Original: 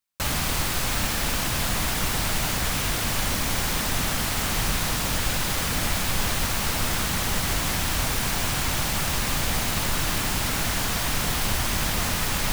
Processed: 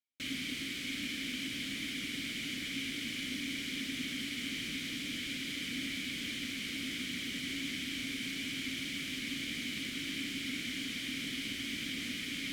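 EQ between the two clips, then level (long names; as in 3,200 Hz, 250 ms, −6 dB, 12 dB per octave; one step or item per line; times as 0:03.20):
formant filter i
high-shelf EQ 4,200 Hz +12 dB
0.0 dB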